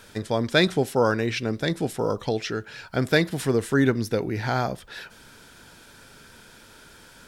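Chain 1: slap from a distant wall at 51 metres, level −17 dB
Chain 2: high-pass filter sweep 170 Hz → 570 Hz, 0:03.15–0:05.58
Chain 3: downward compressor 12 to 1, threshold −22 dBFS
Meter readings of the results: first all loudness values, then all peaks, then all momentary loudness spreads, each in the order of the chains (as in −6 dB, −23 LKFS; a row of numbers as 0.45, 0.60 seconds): −24.5, −22.0, −29.0 LKFS; −5.0, −2.5, −13.0 dBFS; 10, 12, 21 LU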